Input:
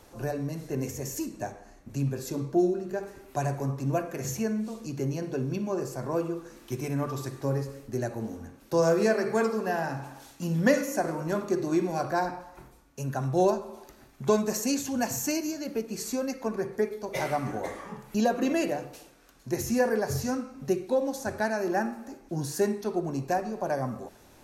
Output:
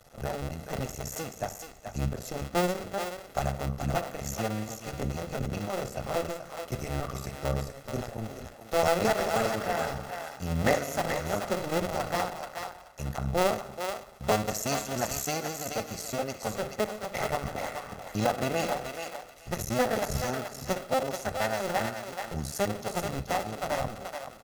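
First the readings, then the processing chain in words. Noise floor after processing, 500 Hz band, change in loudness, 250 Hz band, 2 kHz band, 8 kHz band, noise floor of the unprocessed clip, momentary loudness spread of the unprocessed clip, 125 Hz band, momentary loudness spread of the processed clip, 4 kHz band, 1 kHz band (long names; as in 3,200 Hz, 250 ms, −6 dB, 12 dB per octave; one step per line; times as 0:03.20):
−48 dBFS, −2.5 dB, −2.0 dB, −6.0 dB, +1.0 dB, +0.5 dB, −55 dBFS, 11 LU, −1.5 dB, 10 LU, +4.5 dB, +1.5 dB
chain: sub-harmonics by changed cycles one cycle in 2, muted
comb filter 1.5 ms, depth 48%
on a send: feedback echo with a high-pass in the loop 430 ms, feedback 19%, high-pass 660 Hz, level −5 dB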